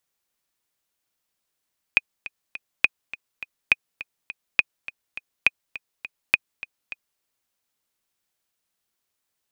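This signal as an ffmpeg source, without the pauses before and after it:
-f lavfi -i "aevalsrc='pow(10,(-2-17.5*gte(mod(t,3*60/206),60/206))/20)*sin(2*PI*2490*mod(t,60/206))*exp(-6.91*mod(t,60/206)/0.03)':d=5.24:s=44100"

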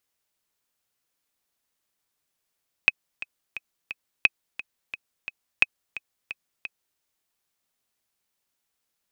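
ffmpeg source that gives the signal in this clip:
-f lavfi -i "aevalsrc='pow(10,(-3-16.5*gte(mod(t,4*60/175),60/175))/20)*sin(2*PI*2540*mod(t,60/175))*exp(-6.91*mod(t,60/175)/0.03)':d=4.11:s=44100"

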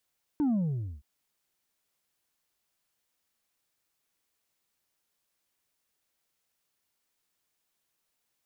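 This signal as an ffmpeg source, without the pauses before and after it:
-f lavfi -i "aevalsrc='0.0631*clip((0.62-t)/0.51,0,1)*tanh(1.41*sin(2*PI*310*0.62/log(65/310)*(exp(log(65/310)*t/0.62)-1)))/tanh(1.41)':d=0.62:s=44100"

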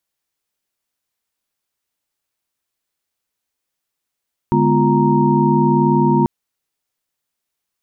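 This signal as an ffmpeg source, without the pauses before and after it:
-f lavfi -i "aevalsrc='0.133*(sin(2*PI*146.83*t)+sin(2*PI*207.65*t)+sin(2*PI*246.94*t)+sin(2*PI*349.23*t)+sin(2*PI*932.33*t))':d=1.74:s=44100"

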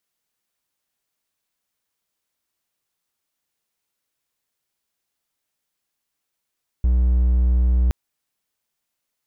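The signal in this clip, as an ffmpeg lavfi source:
-f lavfi -i "aevalsrc='0.251*(1-4*abs(mod(61.4*t+0.25,1)-0.5))':d=1.07:s=44100"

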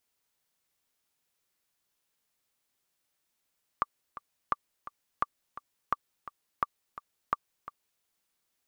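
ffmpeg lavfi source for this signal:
-f lavfi -i "aevalsrc='pow(10,(-12.5-15*gte(mod(t,2*60/171),60/171))/20)*sin(2*PI*1170*mod(t,60/171))*exp(-6.91*mod(t,60/171)/0.03)':d=4.21:s=44100"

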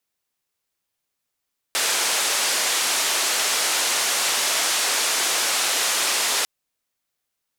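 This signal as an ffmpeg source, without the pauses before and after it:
-f lavfi -i "anoisesrc=c=white:d=4.7:r=44100:seed=1,highpass=f=450,lowpass=f=8700,volume=-13dB"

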